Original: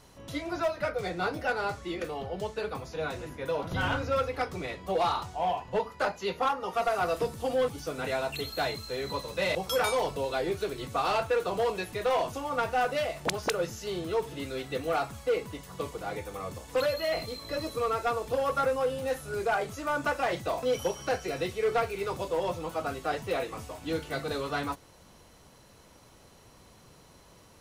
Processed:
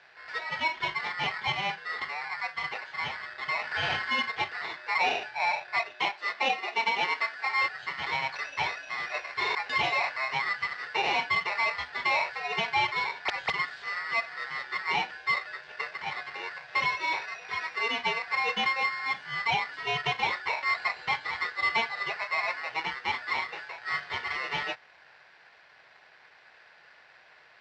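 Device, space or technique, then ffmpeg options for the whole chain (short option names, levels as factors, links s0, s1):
ring modulator pedal into a guitar cabinet: -filter_complex "[0:a]aeval=exprs='val(0)*sgn(sin(2*PI*1600*n/s))':c=same,highpass=92,equalizer=f=110:t=q:w=4:g=-7,equalizer=f=210:t=q:w=4:g=-8,equalizer=f=290:t=q:w=4:g=-9,equalizer=f=780:t=q:w=4:g=6,equalizer=f=1200:t=q:w=4:g=-4,equalizer=f=1900:t=q:w=4:g=3,lowpass=f=4100:w=0.5412,lowpass=f=4100:w=1.3066,asettb=1/sr,asplit=3[s0][s1][s2];[s0]atrim=end=5.944[s3];[s1]atrim=start=5.94:end=7.63,asetpts=PTS-STARTPTS,afade=t=in:d=0.004:c=qsin,afade=t=out:st=1.686:d=0.004:c=qsin,highpass=f=200:w=0.5412,highpass=f=200:w=1.3066[s4];[s2]atrim=start=7.626[s5];[s3][s4]acrossfade=d=0.004:c1=hsin:c2=qsin[s6];[s6][s5]acrossfade=d=0.004:c1=qsin:c2=hsin"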